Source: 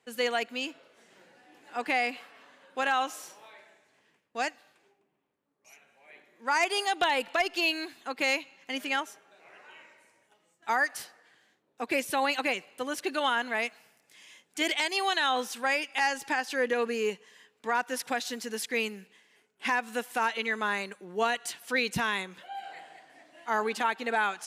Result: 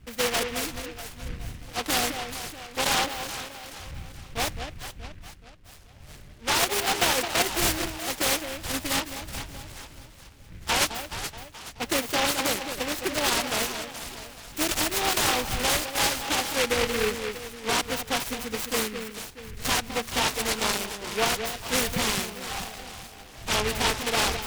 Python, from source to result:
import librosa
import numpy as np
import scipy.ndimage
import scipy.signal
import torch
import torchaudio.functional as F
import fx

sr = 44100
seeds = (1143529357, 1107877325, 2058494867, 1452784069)

y = fx.dmg_wind(x, sr, seeds[0], corner_hz=92.0, level_db=-46.0)
y = fx.echo_alternate(y, sr, ms=213, hz=810.0, feedback_pct=65, wet_db=-6)
y = fx.noise_mod_delay(y, sr, seeds[1], noise_hz=1900.0, depth_ms=0.21)
y = y * librosa.db_to_amplitude(2.5)